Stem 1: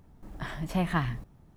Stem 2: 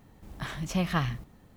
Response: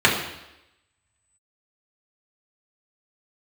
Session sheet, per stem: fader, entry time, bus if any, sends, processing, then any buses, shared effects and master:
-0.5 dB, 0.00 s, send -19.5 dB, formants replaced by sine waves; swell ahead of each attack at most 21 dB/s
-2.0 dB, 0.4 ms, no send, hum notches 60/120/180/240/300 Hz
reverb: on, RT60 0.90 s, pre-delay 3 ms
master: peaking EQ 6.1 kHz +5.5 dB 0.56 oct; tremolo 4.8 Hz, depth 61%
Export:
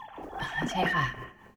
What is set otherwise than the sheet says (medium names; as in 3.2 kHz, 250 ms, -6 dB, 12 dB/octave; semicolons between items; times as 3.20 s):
stem 1 -0.5 dB -> -6.5 dB; stem 2: polarity flipped